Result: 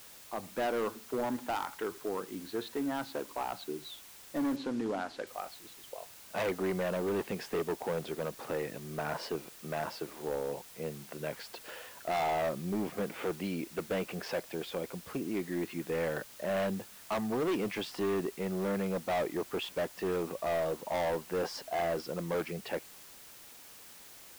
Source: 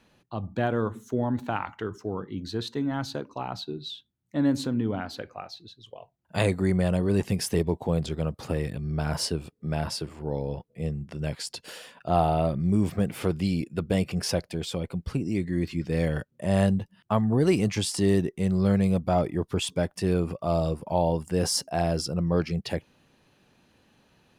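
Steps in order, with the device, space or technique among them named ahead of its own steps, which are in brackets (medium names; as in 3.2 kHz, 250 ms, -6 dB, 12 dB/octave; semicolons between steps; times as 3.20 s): aircraft radio (band-pass 350–2300 Hz; hard clipper -28 dBFS, distortion -8 dB; white noise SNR 17 dB); 4.56–5.27 s: low-pass 6.7 kHz 12 dB/octave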